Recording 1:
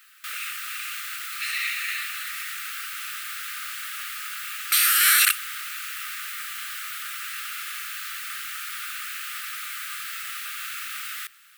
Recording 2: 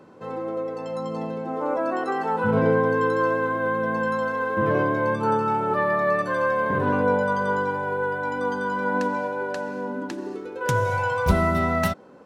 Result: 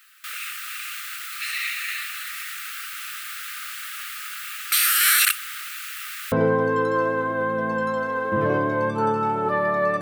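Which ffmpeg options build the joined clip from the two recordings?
ffmpeg -i cue0.wav -i cue1.wav -filter_complex "[0:a]asettb=1/sr,asplit=3[link_01][link_02][link_03];[link_01]atrim=end=5.684[link_04];[link_02]atrim=start=5.68:end=6.32,asetpts=PTS-STARTPTS,afade=type=in:duration=0.004:curve=qsin,afade=type=out:start_time=0.636:duration=0.004:curve=qsin,equalizer=frequency=300:width_type=o:width=2.1:gain=-8.5[link_05];[link_03]atrim=start=6.316[link_06];[link_04][link_05]acrossfade=duration=0.004:curve1=hsin:curve2=qsin[link_07];[link_07][link_06]acrossfade=duration=0.004:curve1=qsin:curve2=hsin,apad=whole_dur=10.01,atrim=end=10.01,atrim=end=6.322[link_08];[1:a]atrim=start=2.568:end=6.26[link_09];[link_08][link_09]acrossfade=duration=0.004:curve1=hsin:curve2=hsin" out.wav

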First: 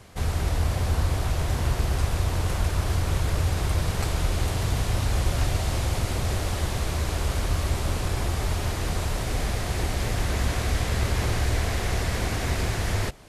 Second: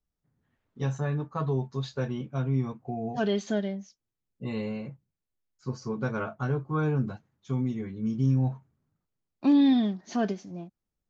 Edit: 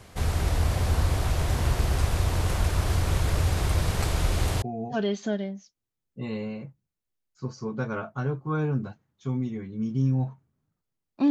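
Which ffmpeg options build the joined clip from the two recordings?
ffmpeg -i cue0.wav -i cue1.wav -filter_complex "[0:a]apad=whole_dur=11.3,atrim=end=11.3,atrim=end=4.622[link_01];[1:a]atrim=start=2.858:end=9.54[link_02];[link_01][link_02]acrossfade=duration=0.004:curve1=hsin:curve2=hsin" out.wav

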